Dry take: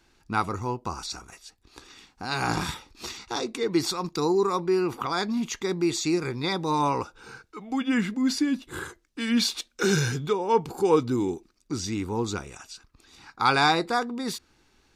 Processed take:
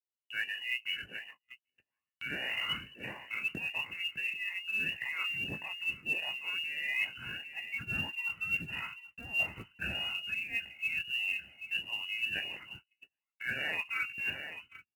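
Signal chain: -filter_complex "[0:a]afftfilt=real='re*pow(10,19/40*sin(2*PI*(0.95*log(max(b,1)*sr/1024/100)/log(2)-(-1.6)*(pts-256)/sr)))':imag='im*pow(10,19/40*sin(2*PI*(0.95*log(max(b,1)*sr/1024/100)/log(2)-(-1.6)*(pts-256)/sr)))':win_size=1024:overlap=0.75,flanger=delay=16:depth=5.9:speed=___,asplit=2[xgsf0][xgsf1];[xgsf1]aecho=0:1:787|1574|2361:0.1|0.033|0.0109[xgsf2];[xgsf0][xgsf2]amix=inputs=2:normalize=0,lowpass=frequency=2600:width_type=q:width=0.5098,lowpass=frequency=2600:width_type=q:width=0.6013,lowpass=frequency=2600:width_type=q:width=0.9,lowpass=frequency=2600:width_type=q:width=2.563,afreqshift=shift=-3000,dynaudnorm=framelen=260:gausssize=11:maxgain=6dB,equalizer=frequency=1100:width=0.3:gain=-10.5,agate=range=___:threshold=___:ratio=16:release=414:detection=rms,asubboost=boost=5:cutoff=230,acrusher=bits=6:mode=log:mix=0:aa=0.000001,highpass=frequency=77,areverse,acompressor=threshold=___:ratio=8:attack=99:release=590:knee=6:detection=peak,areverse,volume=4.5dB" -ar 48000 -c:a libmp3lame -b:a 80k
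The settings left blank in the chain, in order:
2.6, -42dB, -44dB, -40dB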